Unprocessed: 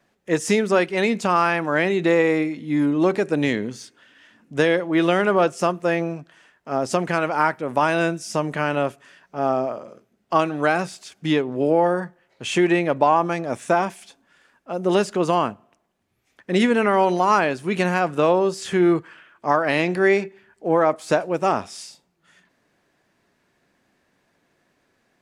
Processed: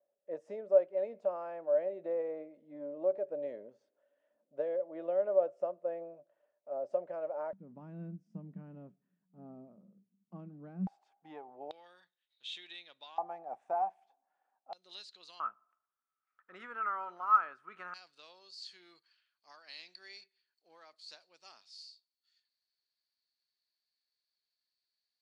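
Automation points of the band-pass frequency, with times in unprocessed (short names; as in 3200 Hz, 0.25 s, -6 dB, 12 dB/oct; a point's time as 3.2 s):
band-pass, Q 19
580 Hz
from 7.53 s 190 Hz
from 10.87 s 800 Hz
from 11.71 s 3700 Hz
from 13.18 s 770 Hz
from 14.73 s 4100 Hz
from 15.4 s 1300 Hz
from 17.94 s 4400 Hz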